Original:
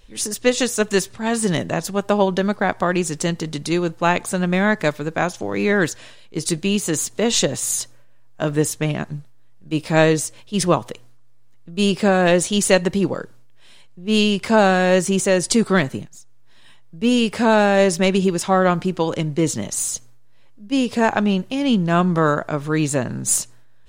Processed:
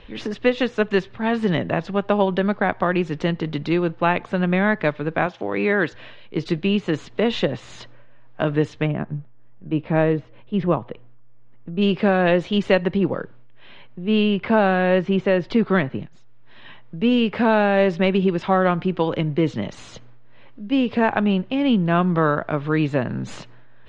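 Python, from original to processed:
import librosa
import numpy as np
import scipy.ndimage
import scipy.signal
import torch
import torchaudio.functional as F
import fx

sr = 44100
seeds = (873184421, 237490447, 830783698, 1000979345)

y = fx.highpass(x, sr, hz=250.0, slope=6, at=(5.26, 5.91))
y = fx.spacing_loss(y, sr, db_at_10k=39, at=(8.86, 11.81), fade=0.02)
y = fx.air_absorb(y, sr, metres=130.0, at=(12.97, 15.98))
y = scipy.signal.sosfilt(scipy.signal.butter(4, 3300.0, 'lowpass', fs=sr, output='sos'), y)
y = fx.band_squash(y, sr, depth_pct=40)
y = y * librosa.db_to_amplitude(-1.0)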